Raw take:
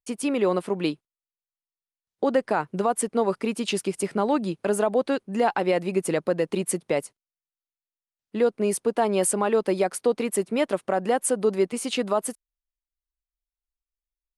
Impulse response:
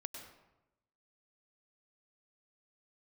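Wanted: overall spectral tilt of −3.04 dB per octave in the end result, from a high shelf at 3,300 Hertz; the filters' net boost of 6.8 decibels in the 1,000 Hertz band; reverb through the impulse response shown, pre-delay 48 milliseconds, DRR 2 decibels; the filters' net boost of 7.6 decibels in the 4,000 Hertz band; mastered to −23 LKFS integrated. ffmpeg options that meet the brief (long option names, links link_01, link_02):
-filter_complex "[0:a]equalizer=frequency=1000:width_type=o:gain=8.5,highshelf=frequency=3300:gain=6.5,equalizer=frequency=4000:width_type=o:gain=5,asplit=2[link_01][link_02];[1:a]atrim=start_sample=2205,adelay=48[link_03];[link_02][link_03]afir=irnorm=-1:irlink=0,volume=0.5dB[link_04];[link_01][link_04]amix=inputs=2:normalize=0,volume=-3.5dB"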